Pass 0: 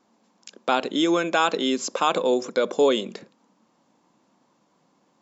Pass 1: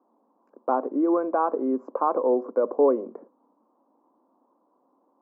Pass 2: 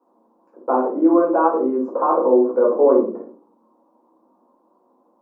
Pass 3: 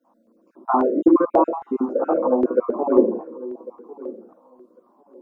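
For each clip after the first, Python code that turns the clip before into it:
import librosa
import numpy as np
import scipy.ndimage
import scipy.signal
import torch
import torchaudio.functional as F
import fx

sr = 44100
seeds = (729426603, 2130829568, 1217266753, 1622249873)

y1 = scipy.signal.sosfilt(scipy.signal.ellip(3, 1.0, 50, [260.0, 1100.0], 'bandpass', fs=sr, output='sos'), x)
y2 = fx.room_shoebox(y1, sr, seeds[0], volume_m3=270.0, walls='furnished', distance_m=4.5)
y2 = y2 * librosa.db_to_amplitude(-2.0)
y3 = fx.spec_dropout(y2, sr, seeds[1], share_pct=33)
y3 = fx.echo_feedback(y3, sr, ms=1099, feedback_pct=18, wet_db=-19.0)
y3 = fx.filter_held_notch(y3, sr, hz=3.7, low_hz=400.0, high_hz=1500.0)
y3 = y3 * librosa.db_to_amplitude(4.0)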